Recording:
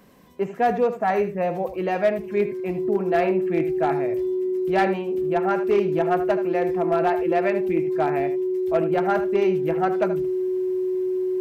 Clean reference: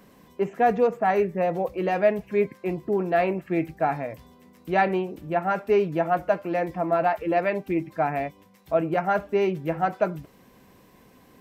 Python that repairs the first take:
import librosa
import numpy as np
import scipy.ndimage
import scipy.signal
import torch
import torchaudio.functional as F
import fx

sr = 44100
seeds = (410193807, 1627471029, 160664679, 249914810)

y = fx.fix_declip(x, sr, threshold_db=-13.0)
y = fx.notch(y, sr, hz=370.0, q=30.0)
y = fx.fix_echo_inverse(y, sr, delay_ms=78, level_db=-11.5)